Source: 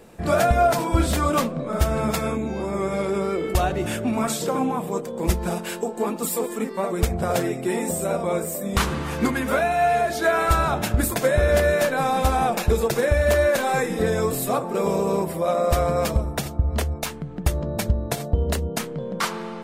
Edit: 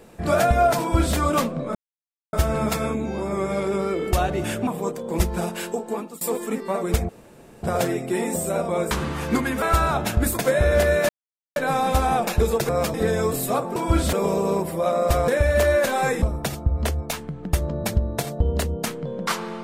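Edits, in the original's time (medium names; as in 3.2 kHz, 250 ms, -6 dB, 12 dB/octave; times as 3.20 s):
0.80–1.17 s: copy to 14.75 s
1.75 s: insert silence 0.58 s
4.09–4.76 s: delete
5.72–6.30 s: fade out equal-power, to -23 dB
7.18 s: insert room tone 0.54 s
8.46–8.81 s: delete
9.52–10.39 s: delete
11.86 s: insert silence 0.47 s
12.99–13.93 s: swap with 15.90–16.15 s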